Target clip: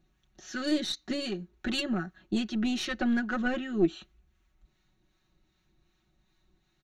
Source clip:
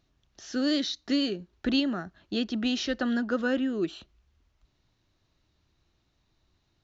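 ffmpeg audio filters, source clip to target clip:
-filter_complex "[0:a]equalizer=f=340:t=o:w=0.77:g=-2.5,aecho=1:1:5.4:0.86,aeval=exprs='0.178*(cos(1*acos(clip(val(0)/0.178,-1,1)))-cos(1*PI/2))+0.0562*(cos(2*acos(clip(val(0)/0.178,-1,1)))-cos(2*PI/2))+0.00708*(cos(5*acos(clip(val(0)/0.178,-1,1)))-cos(5*PI/2))':c=same,equalizer=f=315:t=o:w=0.33:g=6,equalizer=f=500:t=o:w=0.33:g=-9,equalizer=f=1000:t=o:w=0.33:g=-5,equalizer=f=3150:t=o:w=0.33:g=-4,equalizer=f=5000:t=o:w=0.33:g=-10,acrossover=split=820[s0][s1];[s0]aeval=exprs='val(0)*(1-0.5/2+0.5/2*cos(2*PI*2.6*n/s))':c=same[s2];[s1]aeval=exprs='val(0)*(1-0.5/2-0.5/2*cos(2*PI*2.6*n/s))':c=same[s3];[s2][s3]amix=inputs=2:normalize=0"

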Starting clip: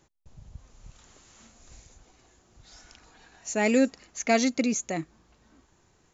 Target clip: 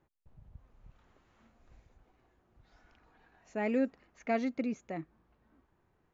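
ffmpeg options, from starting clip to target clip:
-af "lowpass=2000,volume=0.398"

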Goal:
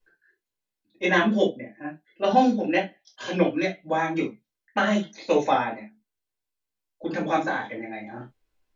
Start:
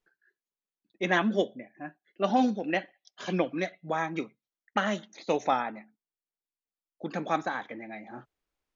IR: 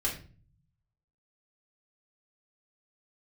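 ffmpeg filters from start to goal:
-filter_complex "[1:a]atrim=start_sample=2205,afade=t=out:st=0.15:d=0.01,atrim=end_sample=7056,asetrate=57330,aresample=44100[s0];[0:a][s0]afir=irnorm=-1:irlink=0,volume=1.26"

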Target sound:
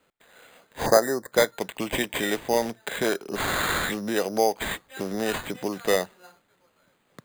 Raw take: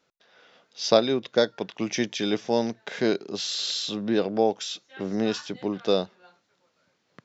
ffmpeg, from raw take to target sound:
-filter_complex "[0:a]acrossover=split=490[s0][s1];[s0]acompressor=threshold=0.02:ratio=6[s2];[s2][s1]amix=inputs=2:normalize=0,acrusher=samples=8:mix=1:aa=0.000001,asettb=1/sr,asplit=3[s3][s4][s5];[s3]atrim=end=0.864[s6];[s4]atrim=start=0.86:end=1.32,asetpts=PTS-STARTPTS,afade=t=in:d=0.004:c=qsin,afade=t=out:st=0.456:d=0.004:c=qsin,asuperstop=centerf=2800:order=8:qfactor=1.1[s7];[s5]atrim=start=1.316[s8];[s6][s7]acrossfade=d=0.004:c1=hsin:c2=qsin[s9];[s9][s8]acrossfade=d=0.004:c1=qsin:c2=hsin,volume=1.58"

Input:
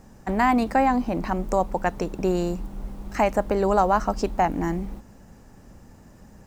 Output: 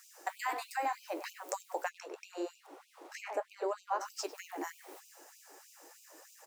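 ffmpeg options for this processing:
-filter_complex "[0:a]highshelf=f=5000:g=11,acompressor=threshold=0.0282:ratio=3,asettb=1/sr,asplit=3[s0][s1][s2];[s0]atrim=end=1.894[s3];[s1]atrim=start=1.89:end=4.01,asetpts=PTS-STARTPTS,afade=t=in:d=0.004:c=qsin,afade=t=out:st=2.116:d=0.004:c=qsin,aemphasis=mode=reproduction:type=75kf[s4];[s2]atrim=start=4.006[s5];[s3][s4]acrossfade=d=0.004:c1=hsin:c2=qsin[s6];[s6][s5]acrossfade=d=0.004:c1=qsin:c2=hsin,flanger=delay=5.7:depth=8.5:regen=-51:speed=0.77:shape=triangular,asplit=2[s7][s8];[s8]adelay=100,highpass=300,lowpass=3400,asoftclip=type=hard:threshold=0.0473,volume=0.316[s9];[s7][s9]amix=inputs=2:normalize=0,afftfilt=real='re*gte(b*sr/1024,270*pow(2400/270,0.5+0.5*sin(2*PI*3.2*pts/sr)))':imag='im*gte(b*sr/1024,270*pow(2400/270,0.5+0.5*sin(2*PI*3.2*pts/sr)))':win_size=1024:overlap=0.75,volume=1.41"

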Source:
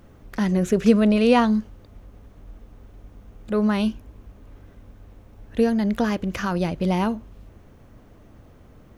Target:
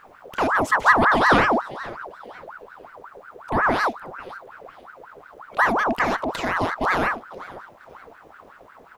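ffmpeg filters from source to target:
-filter_complex "[0:a]asplit=4[s0][s1][s2][s3];[s1]adelay=494,afreqshift=-120,volume=0.126[s4];[s2]adelay=988,afreqshift=-240,volume=0.0442[s5];[s3]adelay=1482,afreqshift=-360,volume=0.0155[s6];[s0][s4][s5][s6]amix=inputs=4:normalize=0,aeval=exprs='val(0)*sin(2*PI*970*n/s+970*0.55/5.5*sin(2*PI*5.5*n/s))':c=same,volume=1.41"

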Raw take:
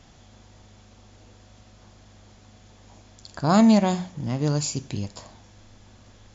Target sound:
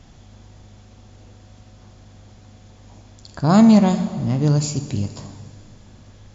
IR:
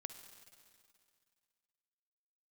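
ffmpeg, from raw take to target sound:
-filter_complex "[0:a]asplit=2[s0][s1];[1:a]atrim=start_sample=2205,lowshelf=f=350:g=9[s2];[s1][s2]afir=irnorm=-1:irlink=0,volume=3.55[s3];[s0][s3]amix=inputs=2:normalize=0,volume=0.355"

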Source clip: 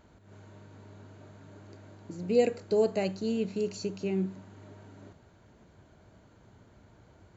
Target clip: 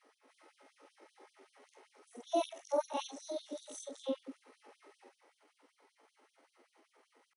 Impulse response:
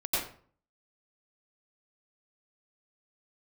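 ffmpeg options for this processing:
-af "afftfilt=real='re':imag='-im':win_size=4096:overlap=0.75,asetrate=60591,aresample=44100,atempo=0.727827,afftfilt=real='re*gte(b*sr/1024,240*pow(3100/240,0.5+0.5*sin(2*PI*5.2*pts/sr)))':imag='im*gte(b*sr/1024,240*pow(3100/240,0.5+0.5*sin(2*PI*5.2*pts/sr)))':win_size=1024:overlap=0.75"

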